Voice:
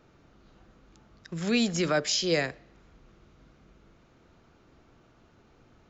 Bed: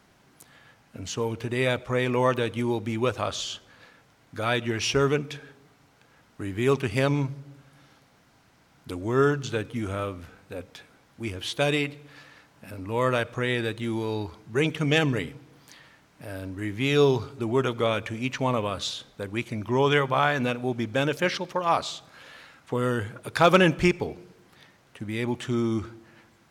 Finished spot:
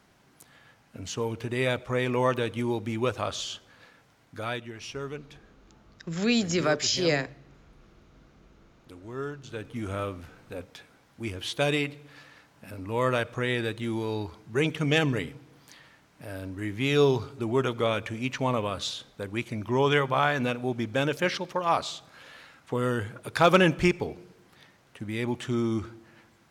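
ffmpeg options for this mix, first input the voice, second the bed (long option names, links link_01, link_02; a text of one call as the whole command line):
ffmpeg -i stem1.wav -i stem2.wav -filter_complex "[0:a]adelay=4750,volume=1dB[link_01];[1:a]volume=10dB,afade=type=out:start_time=4.2:duration=0.51:silence=0.266073,afade=type=in:start_time=9.43:duration=0.53:silence=0.251189[link_02];[link_01][link_02]amix=inputs=2:normalize=0" out.wav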